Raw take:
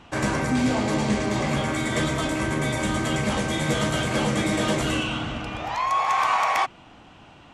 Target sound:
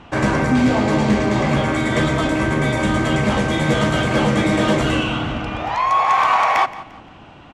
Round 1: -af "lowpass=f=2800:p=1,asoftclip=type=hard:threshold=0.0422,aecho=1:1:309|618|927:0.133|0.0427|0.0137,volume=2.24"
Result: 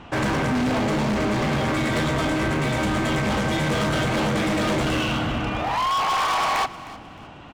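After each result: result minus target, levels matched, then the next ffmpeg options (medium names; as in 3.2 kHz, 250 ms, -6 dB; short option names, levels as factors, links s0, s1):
hard clipper: distortion +25 dB; echo 135 ms late
-af "lowpass=f=2800:p=1,asoftclip=type=hard:threshold=0.158,aecho=1:1:309|618|927:0.133|0.0427|0.0137,volume=2.24"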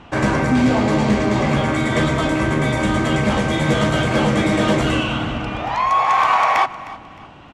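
echo 135 ms late
-af "lowpass=f=2800:p=1,asoftclip=type=hard:threshold=0.158,aecho=1:1:174|348|522:0.133|0.0427|0.0137,volume=2.24"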